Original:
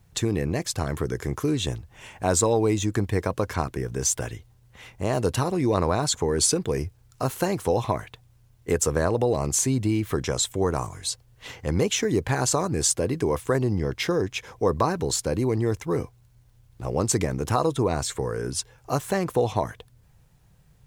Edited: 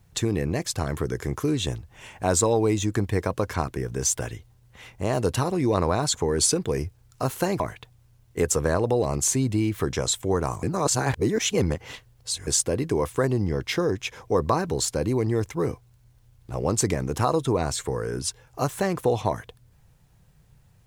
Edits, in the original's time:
7.60–7.91 s: delete
10.94–12.78 s: reverse

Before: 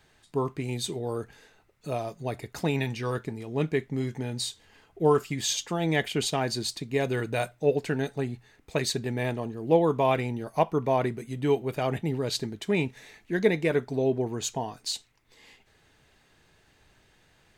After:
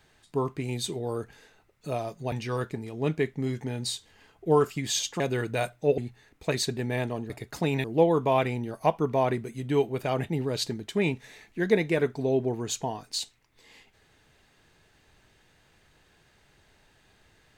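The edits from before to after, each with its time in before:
2.32–2.86 s: move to 9.57 s
5.74–6.99 s: delete
7.77–8.25 s: delete

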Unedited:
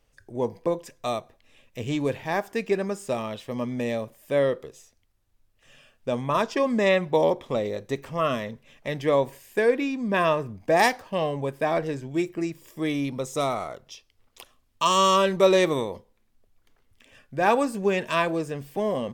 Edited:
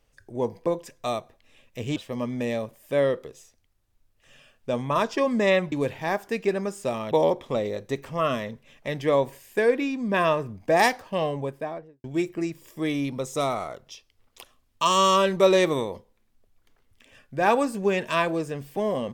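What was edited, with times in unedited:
1.96–3.35 s: move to 7.11 s
11.25–12.04 s: studio fade out

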